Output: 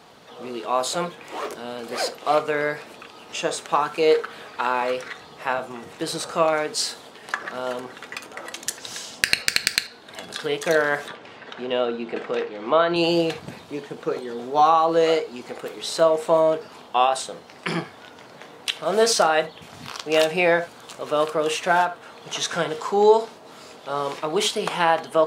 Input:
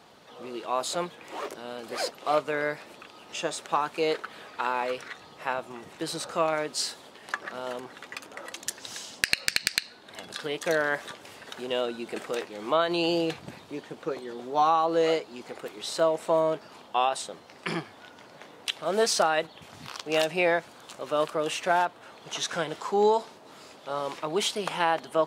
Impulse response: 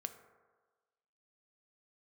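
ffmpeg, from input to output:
-filter_complex "[0:a]asettb=1/sr,asplit=3[a][b][c];[a]atrim=end=11.084[d];[b]atrim=start=11.08:end=12.96,asetpts=PTS-STARTPTS,afade=t=in:d=0.004:c=qsin,afade=t=out:st=1.876:d=0.004:c=qsin,highpass=110,lowpass=3.3k[e];[c]atrim=start=12.956[f];[d][e]acrossfade=d=0.004:c1=hsin:c2=qsin[g];[g][f]acrossfade=d=0.004:c1=qsin:c2=hsin[h];[1:a]atrim=start_sample=2205,atrim=end_sample=3969[i];[h][i]afir=irnorm=-1:irlink=0,volume=8dB"

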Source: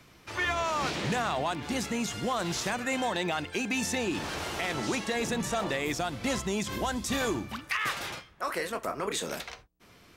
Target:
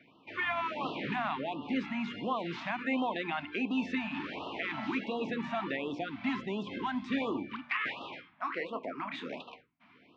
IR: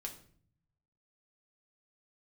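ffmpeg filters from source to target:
-filter_complex "[0:a]highpass=180,equalizer=f=260:t=q:w=4:g=8,equalizer=f=990:t=q:w=4:g=4,equalizer=f=2.3k:t=q:w=4:g=4,lowpass=f=3.2k:w=0.5412,lowpass=f=3.2k:w=1.3066,bandreject=f=60:t=h:w=6,bandreject=f=120:t=h:w=6,bandreject=f=180:t=h:w=6,bandreject=f=240:t=h:w=6,bandreject=f=300:t=h:w=6,bandreject=f=360:t=h:w=6,bandreject=f=420:t=h:w=6,bandreject=f=480:t=h:w=6,bandreject=f=540:t=h:w=6,asplit=2[a][b];[1:a]atrim=start_sample=2205[c];[b][c]afir=irnorm=-1:irlink=0,volume=-14dB[d];[a][d]amix=inputs=2:normalize=0,afftfilt=real='re*(1-between(b*sr/1024,400*pow(1900/400,0.5+0.5*sin(2*PI*1.4*pts/sr))/1.41,400*pow(1900/400,0.5+0.5*sin(2*PI*1.4*pts/sr))*1.41))':imag='im*(1-between(b*sr/1024,400*pow(1900/400,0.5+0.5*sin(2*PI*1.4*pts/sr))/1.41,400*pow(1900/400,0.5+0.5*sin(2*PI*1.4*pts/sr))*1.41))':win_size=1024:overlap=0.75,volume=-5dB"

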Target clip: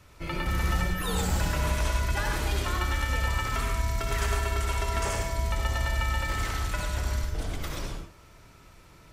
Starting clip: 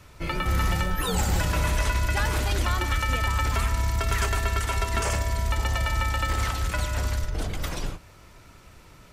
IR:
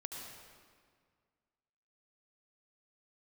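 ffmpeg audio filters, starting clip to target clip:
-filter_complex "[1:a]atrim=start_sample=2205,afade=t=out:st=0.22:d=0.01,atrim=end_sample=10143,asetrate=52920,aresample=44100[a];[0:a][a]afir=irnorm=-1:irlink=0,volume=1.5dB"

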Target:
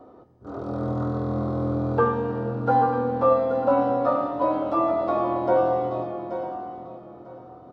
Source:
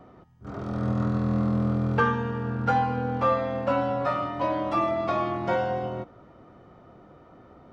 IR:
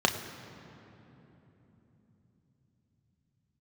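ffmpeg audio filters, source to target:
-filter_complex "[0:a]asplit=2[a][b];[b]aecho=0:1:829:0.266[c];[a][c]amix=inputs=2:normalize=0,acrossover=split=2600[d][e];[e]acompressor=threshold=-50dB:ratio=4:attack=1:release=60[f];[d][f]amix=inputs=2:normalize=0,equalizer=f=420:t=o:w=2.2:g=8.5,aecho=1:1:946|1892:0.2|0.0359,asplit=2[g][h];[1:a]atrim=start_sample=2205,asetrate=57330,aresample=44100[i];[h][i]afir=irnorm=-1:irlink=0,volume=-12.5dB[j];[g][j]amix=inputs=2:normalize=0,volume=-7dB"

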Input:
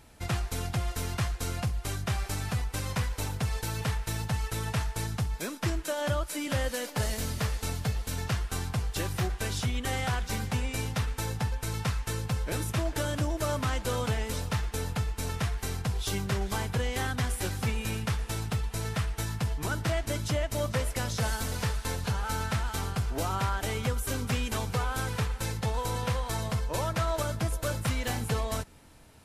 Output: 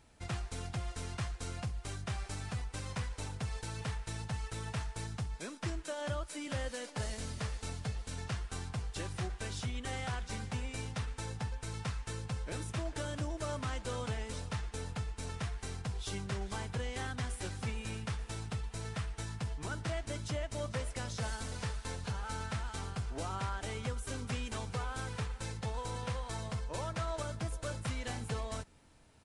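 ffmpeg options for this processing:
-af "aresample=22050,aresample=44100,volume=-8dB"

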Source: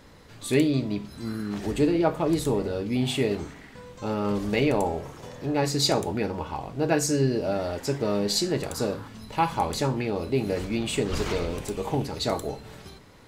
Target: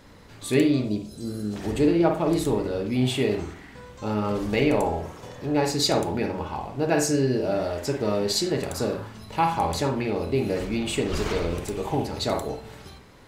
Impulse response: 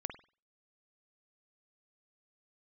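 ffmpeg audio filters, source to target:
-filter_complex "[0:a]asettb=1/sr,asplit=3[a][b][c];[a]atrim=end=0.844[d];[b]atrim=start=0.84:end=1.56,asetpts=PTS-STARTPTS,afade=t=in:d=0.004:c=qsin,afade=t=out:st=0.716:d=0.004:c=qsin,equalizer=f=500:t=o:w=1:g=6,equalizer=f=1k:t=o:w=1:g=-11,equalizer=f=2k:t=o:w=1:g=-11,equalizer=f=8k:t=o:w=1:g=7[e];[c]atrim=start=1.556[f];[d][e]acrossfade=d=0.004:c1=hsin:c2=qsin[g];[g][f]acrossfade=d=0.004:c1=qsin:c2=hsin[h];[1:a]atrim=start_sample=2205[i];[h][i]afir=irnorm=-1:irlink=0,volume=2.5dB"

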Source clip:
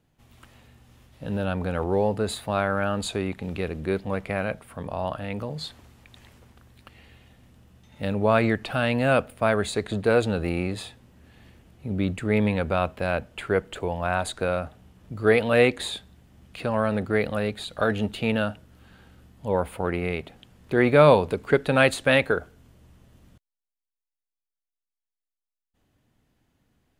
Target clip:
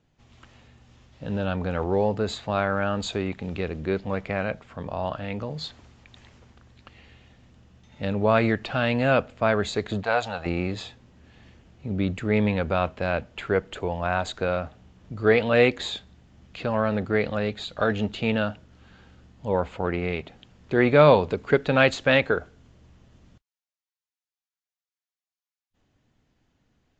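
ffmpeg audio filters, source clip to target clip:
-filter_complex "[0:a]asettb=1/sr,asplit=3[a][b][c];[a]atrim=end=10.034[d];[b]atrim=start=10.03:end=10.46,asetpts=PTS-STARTPTS,afade=t=in:d=0.004:c=qsin,afade=t=out:st=0.426:d=0.004:c=qsin,lowshelf=f=530:t=q:w=3:g=-11[e];[c]atrim=start=10.456[f];[d][e]acrossfade=d=0.004:c1=hsin:c2=qsin[g];[g][f]acrossfade=d=0.004:c1=qsin:c2=hsin" -ar 16000 -c:a libvorbis -b:a 64k

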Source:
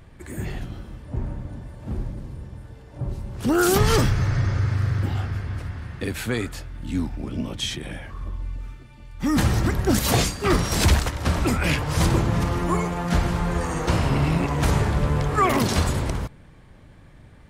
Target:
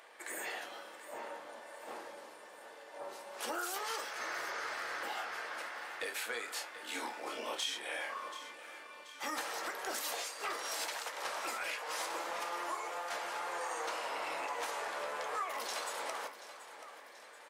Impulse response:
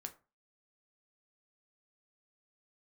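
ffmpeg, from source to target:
-filter_complex "[0:a]highpass=f=550:w=0.5412,highpass=f=550:w=1.3066,acompressor=threshold=-37dB:ratio=12,asoftclip=type=tanh:threshold=-28.5dB,asettb=1/sr,asplit=3[a][b][c];[a]atrim=end=6.454[d];[b]atrim=start=6.45:end=8.53,asetpts=PTS-STARTPTS,afade=t=in:d=0.004:c=qsin,afade=t=out:st=2.076:d=0.004:c=qsin,asplit=2[e][f];[f]adelay=28,volume=-3dB[g];[e][g]amix=inputs=2:normalize=0,atrim=end_sample=91728[h];[c]atrim=start=8.526[i];[d][h]acrossfade=d=0.004:c1=hsin:c2=qsin[j];[j][i]acrossfade=d=0.004:c1=qsin:c2=hsin,aecho=1:1:732|1464|2196|2928|3660:0.2|0.106|0.056|0.0297|0.0157[k];[1:a]atrim=start_sample=2205,asetrate=52920,aresample=44100[l];[k][l]afir=irnorm=-1:irlink=0,volume=7.5dB"

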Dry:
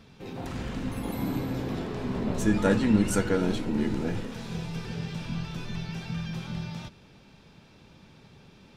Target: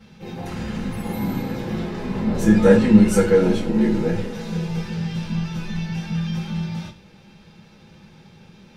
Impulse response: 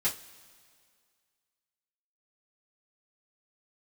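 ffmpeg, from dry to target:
-filter_complex "[0:a]asettb=1/sr,asplit=3[a][b][c];[a]atrim=end=2.324[d];[b]atrim=start=2.32:end=4.81,asetpts=PTS-STARTPTS,afade=t=in:d=0.004:c=qsin,afade=t=out:st=2.486:d=0.004:c=qsin,equalizer=f=460:t=o:w=0.86:g=5.5[e];[c]atrim=start=4.806[f];[d][e]acrossfade=d=0.004:c1=hsin:c2=qsin[g];[g][f]acrossfade=d=0.004:c1=qsin:c2=hsin[h];[1:a]atrim=start_sample=2205,afade=t=out:st=0.18:d=0.01,atrim=end_sample=8379[i];[h][i]afir=irnorm=-1:irlink=0,volume=-1.5dB"

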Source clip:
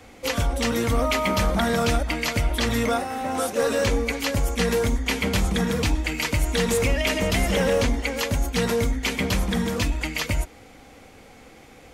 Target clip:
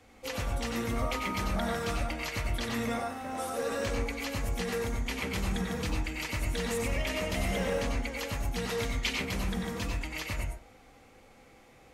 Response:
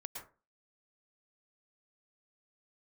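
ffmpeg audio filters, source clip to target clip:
-filter_complex "[0:a]asettb=1/sr,asplit=3[a][b][c];[a]atrim=end=8.704[d];[b]atrim=start=8.7:end=9.13,asetpts=PTS-STARTPTS,afade=t=in:d=0.004:c=qsin,afade=t=out:st=0.426:d=0.004:c=qsin,equalizer=f=3.6k:t=o:w=1.8:g=8.5[e];[c]atrim=start=9.126[f];[d][e]acrossfade=d=0.004:c1=hsin:c2=qsin[g];[g][f]acrossfade=d=0.004:c1=qsin:c2=hsin[h];[1:a]atrim=start_sample=2205,asetrate=52920,aresample=44100[i];[h][i]afir=irnorm=-1:irlink=0,volume=-4.5dB"

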